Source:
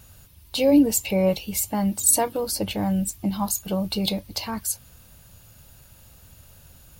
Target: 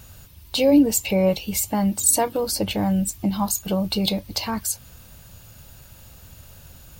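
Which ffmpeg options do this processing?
-filter_complex "[0:a]equalizer=f=11000:w=4.3:g=-8,asplit=2[s0][s1];[s1]acompressor=threshold=0.0355:ratio=6,volume=0.75[s2];[s0][s2]amix=inputs=2:normalize=0"

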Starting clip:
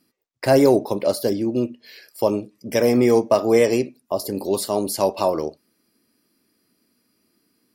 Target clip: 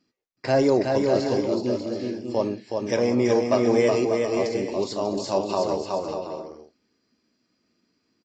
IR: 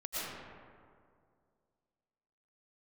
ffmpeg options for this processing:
-af "atempo=0.94,aecho=1:1:370|592|725.2|805.1|853.1:0.631|0.398|0.251|0.158|0.1,volume=0.562" -ar 16000 -c:a aac -b:a 32k

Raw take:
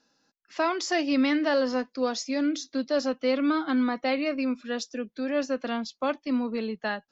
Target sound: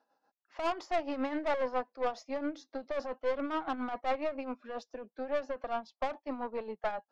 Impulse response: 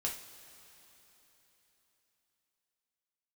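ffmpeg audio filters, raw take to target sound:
-af "bandpass=f=770:t=q:w=2.2:csg=0,aeval=exprs='(tanh(44.7*val(0)+0.45)-tanh(0.45))/44.7':c=same,tremolo=f=7.3:d=0.64,volume=2.37"

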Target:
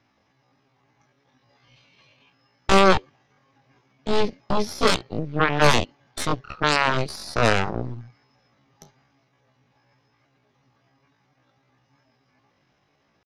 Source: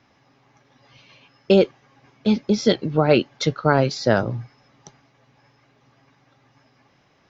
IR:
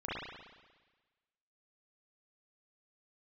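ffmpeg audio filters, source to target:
-af "aeval=exprs='0.841*(cos(1*acos(clip(val(0)/0.841,-1,1)))-cos(1*PI/2))+0.0596*(cos(2*acos(clip(val(0)/0.841,-1,1)))-cos(2*PI/2))+0.119*(cos(3*acos(clip(val(0)/0.841,-1,1)))-cos(3*PI/2))+0.15*(cos(7*acos(clip(val(0)/0.841,-1,1)))-cos(7*PI/2))+0.211*(cos(8*acos(clip(val(0)/0.841,-1,1)))-cos(8*PI/2))':c=same,atempo=0.55,volume=0.75"

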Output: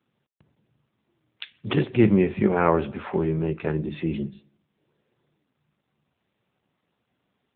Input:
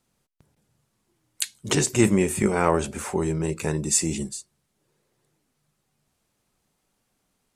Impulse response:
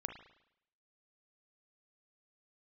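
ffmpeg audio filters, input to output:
-filter_complex "[0:a]asplit=3[s0][s1][s2];[s0]afade=t=out:st=3.6:d=0.02[s3];[s1]bandreject=f=50:t=h:w=6,bandreject=f=100:t=h:w=6,bandreject=f=150:t=h:w=6,bandreject=f=200:t=h:w=6,bandreject=f=250:t=h:w=6,bandreject=f=300:t=h:w=6,afade=t=in:st=3.6:d=0.02,afade=t=out:st=4.38:d=0.02[s4];[s2]afade=t=in:st=4.38:d=0.02[s5];[s3][s4][s5]amix=inputs=3:normalize=0,asplit=2[s6][s7];[1:a]atrim=start_sample=2205,lowpass=3800[s8];[s7][s8]afir=irnorm=-1:irlink=0,volume=0.266[s9];[s6][s9]amix=inputs=2:normalize=0" -ar 8000 -c:a libopencore_amrnb -b:a 7950

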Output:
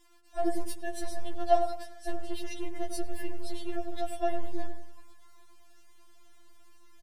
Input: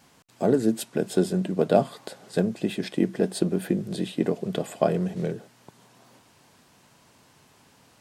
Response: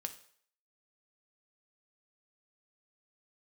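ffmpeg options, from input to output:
-filter_complex "[0:a]asetrate=50274,aresample=44100,asubboost=boost=7:cutoff=110,acrossover=split=270|5900[s0][s1][s2];[s0]aeval=exprs='abs(val(0))':c=same[s3];[s3][s1][s2]amix=inputs=3:normalize=0,asplit=2[s4][s5];[s5]adelay=101,lowpass=f=960:p=1,volume=0.473,asplit=2[s6][s7];[s7]adelay=101,lowpass=f=960:p=1,volume=0.43,asplit=2[s8][s9];[s9]adelay=101,lowpass=f=960:p=1,volume=0.43,asplit=2[s10][s11];[s11]adelay=101,lowpass=f=960:p=1,volume=0.43,asplit=2[s12][s13];[s13]adelay=101,lowpass=f=960:p=1,volume=0.43[s14];[s4][s6][s8][s10][s12][s14]amix=inputs=6:normalize=0,afftfilt=real='re*4*eq(mod(b,16),0)':imag='im*4*eq(mod(b,16),0)':win_size=2048:overlap=0.75,volume=0.596"

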